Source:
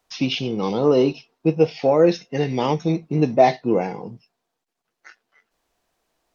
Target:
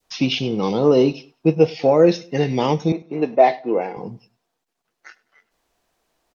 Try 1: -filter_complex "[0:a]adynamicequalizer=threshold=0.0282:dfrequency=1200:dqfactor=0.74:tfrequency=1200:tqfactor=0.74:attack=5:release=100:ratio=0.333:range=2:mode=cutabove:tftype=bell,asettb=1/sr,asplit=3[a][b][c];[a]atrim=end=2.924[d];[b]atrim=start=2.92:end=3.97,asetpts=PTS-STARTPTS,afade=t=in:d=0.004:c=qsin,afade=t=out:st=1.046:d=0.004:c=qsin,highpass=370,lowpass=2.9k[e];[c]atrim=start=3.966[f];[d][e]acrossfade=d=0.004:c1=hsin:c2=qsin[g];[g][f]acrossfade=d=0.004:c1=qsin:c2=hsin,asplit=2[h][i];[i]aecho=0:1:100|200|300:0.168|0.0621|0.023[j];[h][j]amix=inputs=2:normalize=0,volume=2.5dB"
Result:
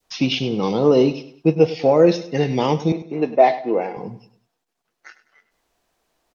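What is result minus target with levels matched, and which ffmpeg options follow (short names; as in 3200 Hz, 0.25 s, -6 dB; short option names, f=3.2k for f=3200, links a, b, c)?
echo-to-direct +8.5 dB
-filter_complex "[0:a]adynamicequalizer=threshold=0.0282:dfrequency=1200:dqfactor=0.74:tfrequency=1200:tqfactor=0.74:attack=5:release=100:ratio=0.333:range=2:mode=cutabove:tftype=bell,asettb=1/sr,asplit=3[a][b][c];[a]atrim=end=2.924[d];[b]atrim=start=2.92:end=3.97,asetpts=PTS-STARTPTS,afade=t=in:d=0.004:c=qsin,afade=t=out:st=1.046:d=0.004:c=qsin,highpass=370,lowpass=2.9k[e];[c]atrim=start=3.966[f];[d][e]acrossfade=d=0.004:c1=hsin:c2=qsin[g];[g][f]acrossfade=d=0.004:c1=qsin:c2=hsin,asplit=2[h][i];[i]aecho=0:1:100|200:0.0631|0.0233[j];[h][j]amix=inputs=2:normalize=0,volume=2.5dB"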